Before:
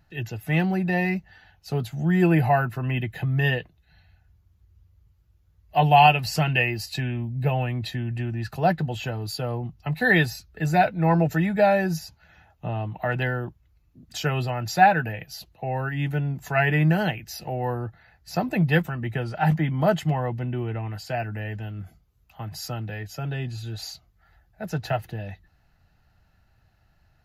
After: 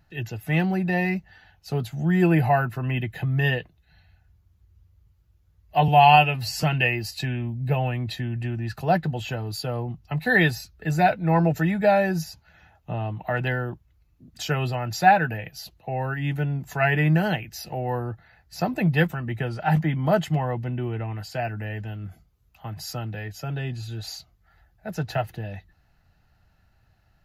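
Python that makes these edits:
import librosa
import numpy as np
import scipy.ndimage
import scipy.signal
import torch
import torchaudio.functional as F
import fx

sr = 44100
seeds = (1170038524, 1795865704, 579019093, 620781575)

y = fx.edit(x, sr, fx.stretch_span(start_s=5.88, length_s=0.5, factor=1.5), tone=tone)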